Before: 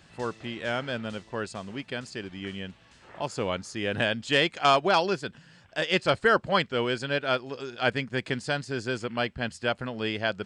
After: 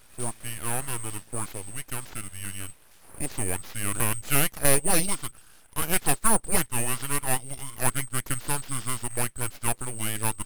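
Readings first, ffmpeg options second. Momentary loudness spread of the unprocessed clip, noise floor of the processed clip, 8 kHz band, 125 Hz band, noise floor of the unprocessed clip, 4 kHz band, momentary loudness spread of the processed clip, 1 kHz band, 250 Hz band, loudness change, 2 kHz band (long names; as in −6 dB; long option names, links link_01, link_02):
14 LU, −54 dBFS, +21.0 dB, +3.0 dB, −57 dBFS, −6.0 dB, 13 LU, −4.0 dB, −2.0 dB, +0.5 dB, −5.0 dB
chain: -af "afftfilt=real='real(if(lt(b,736),b+184*(1-2*mod(floor(b/184),2)),b),0)':imag='imag(if(lt(b,736),b+184*(1-2*mod(floor(b/184),2)),b),0)':win_size=2048:overlap=0.75,aeval=exprs='abs(val(0))':channel_layout=same,volume=3dB"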